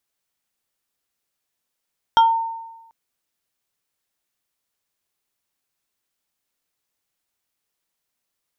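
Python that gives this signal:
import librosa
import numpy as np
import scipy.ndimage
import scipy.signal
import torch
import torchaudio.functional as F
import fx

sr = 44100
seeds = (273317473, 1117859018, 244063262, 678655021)

y = fx.fm2(sr, length_s=0.74, level_db=-8.0, carrier_hz=910.0, ratio=2.52, index=0.67, index_s=0.26, decay_s=1.08, shape='exponential')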